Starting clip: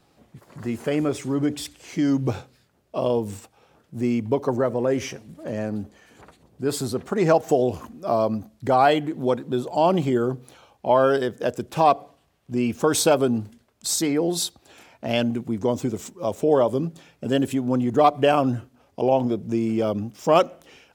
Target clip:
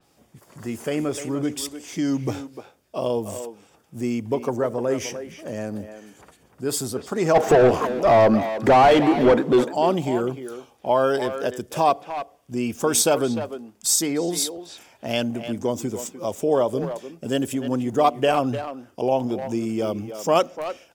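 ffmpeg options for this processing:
-filter_complex "[0:a]bass=f=250:g=-2,treble=f=4000:g=8,bandreject=f=4100:w=8.1,asplit=3[s0][s1][s2];[s0]afade=t=out:st=7.34:d=0.02[s3];[s1]asplit=2[s4][s5];[s5]highpass=f=720:p=1,volume=28.2,asoftclip=type=tanh:threshold=0.631[s6];[s4][s6]amix=inputs=2:normalize=0,lowpass=f=1100:p=1,volume=0.501,afade=t=in:st=7.34:d=0.02,afade=t=out:st=9.63:d=0.02[s7];[s2]afade=t=in:st=9.63:d=0.02[s8];[s3][s7][s8]amix=inputs=3:normalize=0,asplit=2[s9][s10];[s10]adelay=300,highpass=300,lowpass=3400,asoftclip=type=hard:threshold=0.211,volume=0.355[s11];[s9][s11]amix=inputs=2:normalize=0,adynamicequalizer=threshold=0.0126:dfrequency=4700:dqfactor=0.7:tfrequency=4700:tqfactor=0.7:attack=5:release=100:ratio=0.375:range=2.5:mode=cutabove:tftype=highshelf,volume=0.841"

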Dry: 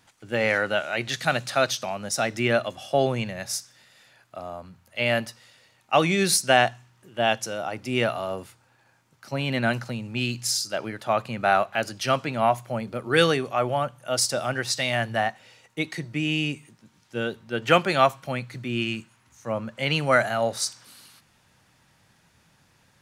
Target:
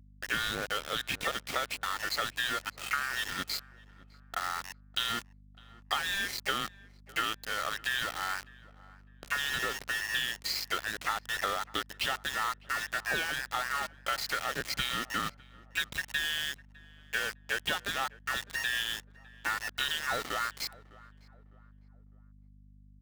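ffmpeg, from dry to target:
-filter_complex "[0:a]afftfilt=real='real(if(between(b,1,1012),(2*floor((b-1)/92)+1)*92-b,b),0)':imag='imag(if(between(b,1,1012),(2*floor((b-1)/92)+1)*92-b,b),0)*if(between(b,1,1012),-1,1)':win_size=2048:overlap=0.75,asplit=2[s0][s1];[s1]alimiter=limit=0.188:level=0:latency=1:release=11,volume=0.708[s2];[s0][s2]amix=inputs=2:normalize=0,asplit=2[s3][s4];[s4]asetrate=66075,aresample=44100,atempo=0.66742,volume=0.178[s5];[s3][s5]amix=inputs=2:normalize=0,lowpass=f=3300:t=q:w=1.8,acompressor=threshold=0.0355:ratio=10,aeval=exprs='val(0)*gte(abs(val(0)),0.0224)':c=same,asplit=2[s6][s7];[s7]adelay=605,lowpass=f=1300:p=1,volume=0.106,asplit=2[s8][s9];[s9]adelay=605,lowpass=f=1300:p=1,volume=0.41,asplit=2[s10][s11];[s11]adelay=605,lowpass=f=1300:p=1,volume=0.41[s12];[s8][s10][s12]amix=inputs=3:normalize=0[s13];[s6][s13]amix=inputs=2:normalize=0,aeval=exprs='val(0)+0.00178*(sin(2*PI*50*n/s)+sin(2*PI*2*50*n/s)/2+sin(2*PI*3*50*n/s)/3+sin(2*PI*4*50*n/s)/4+sin(2*PI*5*50*n/s)/5)':c=same"

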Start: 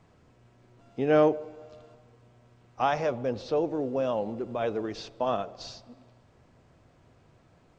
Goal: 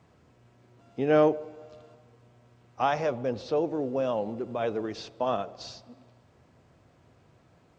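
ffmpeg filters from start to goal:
-af "highpass=57"

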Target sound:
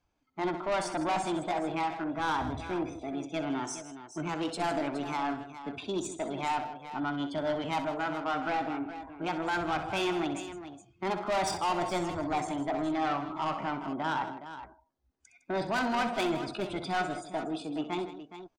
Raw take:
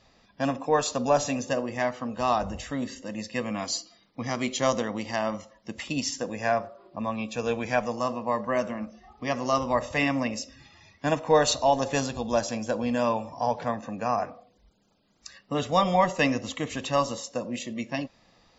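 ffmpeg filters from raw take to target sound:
-af "lowpass=f=2000:p=1,afftdn=nr=18:nf=-45,asoftclip=type=tanh:threshold=0.0501,asetrate=57191,aresample=44100,atempo=0.771105,aecho=1:1:63|158|417:0.282|0.2|0.251"

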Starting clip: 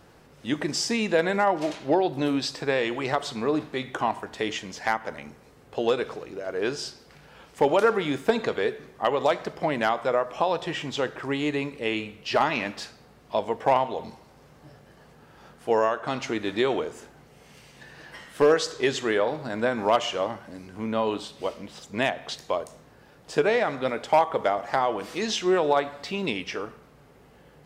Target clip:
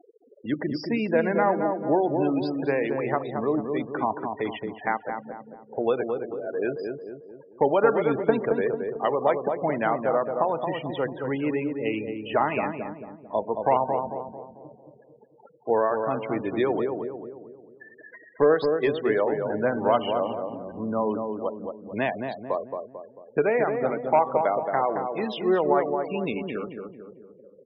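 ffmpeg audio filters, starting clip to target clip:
-filter_complex "[0:a]acrossover=split=270[s0][s1];[s1]acompressor=mode=upward:threshold=0.0224:ratio=2.5[s2];[s0][s2]amix=inputs=2:normalize=0,lowpass=6500,aemphasis=mode=reproduction:type=75kf,afftfilt=real='re*gte(hypot(re,im),0.0355)':imag='im*gte(hypot(re,im),0.0355)':win_size=1024:overlap=0.75,asplit=2[s3][s4];[s4]adelay=222,lowpass=f=980:p=1,volume=0.631,asplit=2[s5][s6];[s6]adelay=222,lowpass=f=980:p=1,volume=0.51,asplit=2[s7][s8];[s8]adelay=222,lowpass=f=980:p=1,volume=0.51,asplit=2[s9][s10];[s10]adelay=222,lowpass=f=980:p=1,volume=0.51,asplit=2[s11][s12];[s12]adelay=222,lowpass=f=980:p=1,volume=0.51,asplit=2[s13][s14];[s14]adelay=222,lowpass=f=980:p=1,volume=0.51,asplit=2[s15][s16];[s16]adelay=222,lowpass=f=980:p=1,volume=0.51[s17];[s3][s5][s7][s9][s11][s13][s15][s17]amix=inputs=8:normalize=0"

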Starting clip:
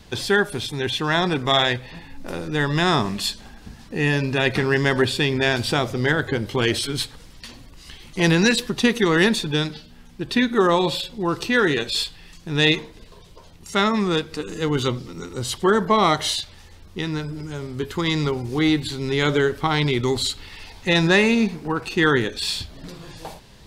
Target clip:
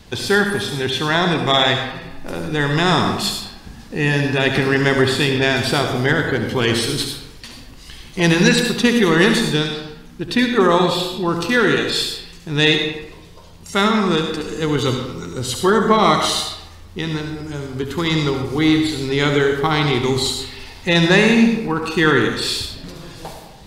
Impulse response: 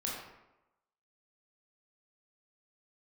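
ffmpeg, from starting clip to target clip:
-filter_complex "[0:a]asplit=2[s0][s1];[1:a]atrim=start_sample=2205,highshelf=f=7400:g=9.5,adelay=70[s2];[s1][s2]afir=irnorm=-1:irlink=0,volume=0.398[s3];[s0][s3]amix=inputs=2:normalize=0,volume=1.33"

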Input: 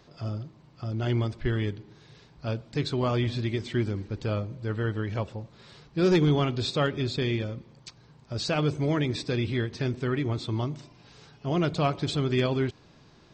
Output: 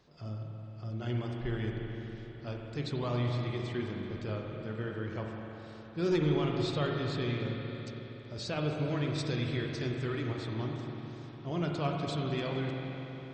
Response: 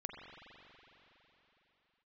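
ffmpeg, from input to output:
-filter_complex "[0:a]asettb=1/sr,asplit=3[s0][s1][s2];[s0]atrim=end=9.184[s3];[s1]atrim=start=9.18:end=10.32,asetpts=PTS-STARTPTS,afade=t=in:d=0.004:c=qsin,afade=t=out:st=1.136:d=0.004:c=qsin,highshelf=f=3900:g=9[s4];[s2]atrim=start=10.316[s5];[s3][s4]acrossfade=d=0.004:c1=hsin:c2=qsin[s6];[s6][s5]acrossfade=d=0.004:c1=qsin:c2=hsin[s7];[1:a]atrim=start_sample=2205[s8];[s7][s8]afir=irnorm=-1:irlink=0,volume=0.596"

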